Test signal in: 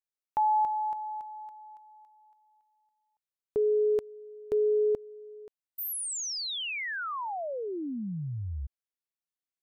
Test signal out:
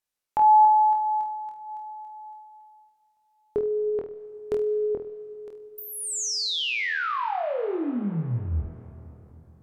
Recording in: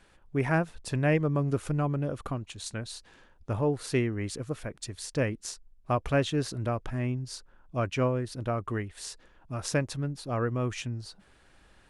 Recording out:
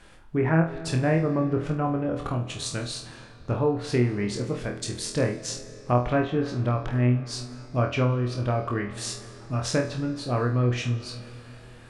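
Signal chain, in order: low-pass that closes with the level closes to 1.7 kHz, closed at -23 dBFS; in parallel at +1.5 dB: compression, threshold -37 dBFS; on the sum: flutter echo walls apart 4.2 m, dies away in 0.34 s; algorithmic reverb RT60 3.9 s, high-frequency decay 0.6×, pre-delay 110 ms, DRR 14.5 dB

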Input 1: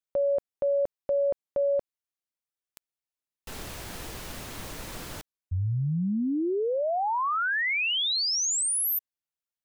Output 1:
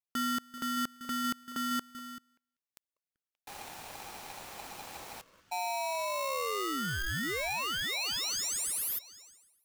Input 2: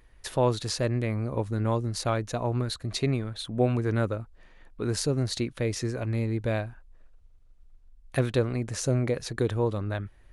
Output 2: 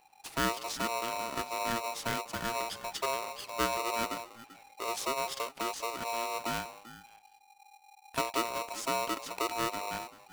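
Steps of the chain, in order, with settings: repeats whose band climbs or falls 193 ms, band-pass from 260 Hz, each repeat 1.4 oct, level -9.5 dB; polarity switched at an audio rate 810 Hz; trim -7 dB

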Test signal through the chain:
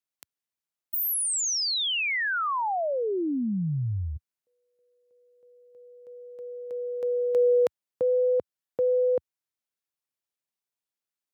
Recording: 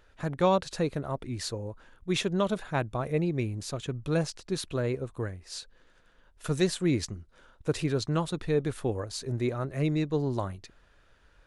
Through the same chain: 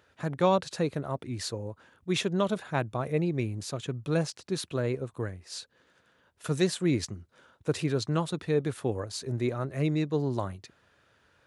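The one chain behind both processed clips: high-pass 83 Hz 24 dB/octave

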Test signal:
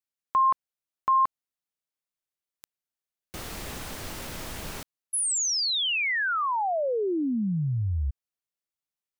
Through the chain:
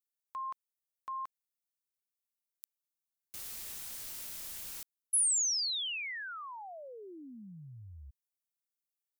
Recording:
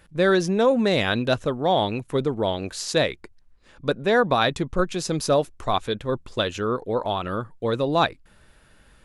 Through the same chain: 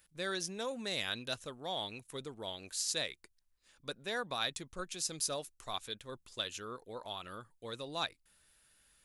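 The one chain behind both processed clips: pre-emphasis filter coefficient 0.9; trim -2.5 dB

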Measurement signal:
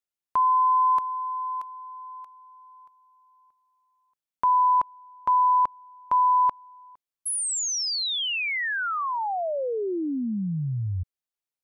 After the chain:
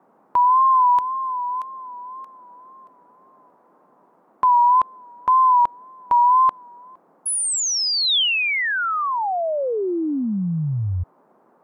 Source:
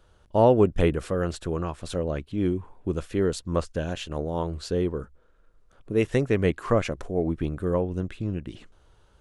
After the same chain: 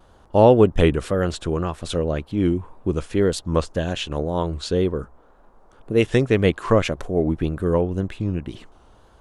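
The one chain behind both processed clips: vibrato 1.9 Hz 69 cents; dynamic bell 3.4 kHz, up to +5 dB, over -48 dBFS, Q 2.3; band noise 180–1100 Hz -63 dBFS; trim +5 dB

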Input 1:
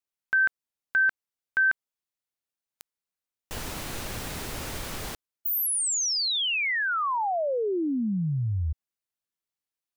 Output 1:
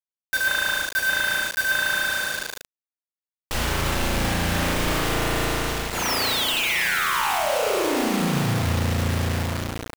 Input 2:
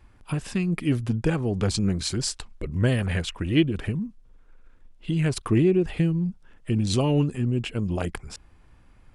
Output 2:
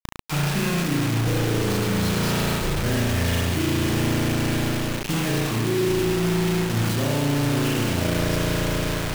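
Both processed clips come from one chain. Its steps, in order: CVSD coder 32 kbps; dynamic bell 590 Hz, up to +4 dB, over -45 dBFS, Q 6; in parallel at -4 dB: integer overflow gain 26.5 dB; on the sum: spring tank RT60 2.8 s, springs 35 ms, chirp 80 ms, DRR -9 dB; reverse; compression 10:1, threshold -28 dBFS; reverse; bit crusher 6-bit; trim +8 dB

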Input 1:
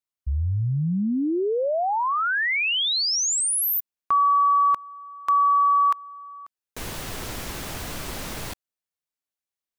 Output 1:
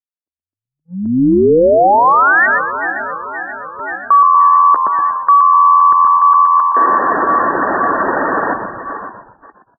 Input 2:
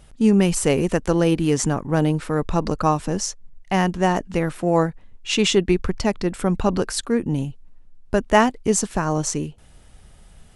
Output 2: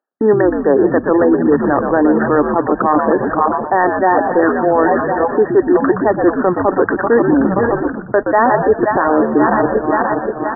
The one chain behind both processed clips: backward echo that repeats 264 ms, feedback 74%, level -13.5 dB; Chebyshev high-pass 280 Hz, order 4; reverse; compression 8:1, threshold -31 dBFS; reverse; hard clipper -26.5 dBFS; gate -48 dBFS, range -47 dB; brick-wall FIR low-pass 1.9 kHz; reverb removal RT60 0.74 s; bass shelf 420 Hz -5.5 dB; on a send: frequency-shifting echo 121 ms, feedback 36%, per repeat -85 Hz, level -7 dB; on the sum: loudness maximiser +28.5 dB; trim -2 dB

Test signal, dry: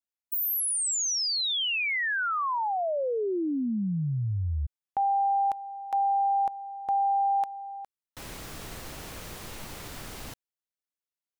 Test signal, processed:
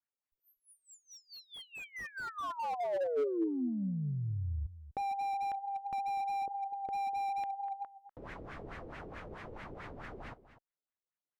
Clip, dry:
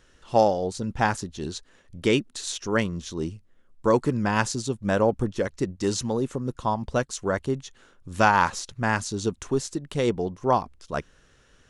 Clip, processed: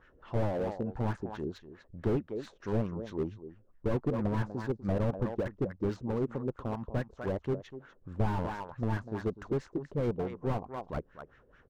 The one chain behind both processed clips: treble shelf 4.6 kHz +8 dB; in parallel at -1 dB: compression 5:1, threshold -39 dBFS; on the sum: Chebyshev shaper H 2 -43 dB, 3 -26 dB, 7 -26 dB, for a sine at -2.5 dBFS; LFO low-pass sine 4.6 Hz 420–2000 Hz; on a send: delay 246 ms -14.5 dB; on the sum: slew-rate limiter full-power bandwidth 25 Hz; trim -3.5 dB

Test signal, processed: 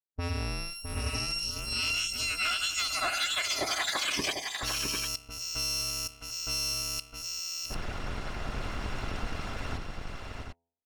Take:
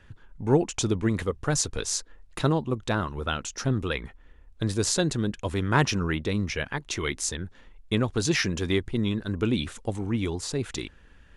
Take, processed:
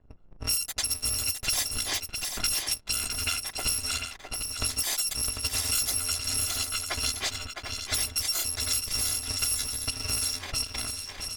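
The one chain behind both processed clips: bit-reversed sample order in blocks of 256 samples; level-controlled noise filter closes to 640 Hz, open at -21.5 dBFS; peaking EQ 5.9 kHz +7 dB 2.4 oct; de-hum 84.83 Hz, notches 12; harmonic-percussive split percussive +5 dB; waveshaping leveller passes 2; compression 4:1, threshold -30 dBFS; on a send: multi-tap echo 660/747 ms -6.5/-7.5 dB

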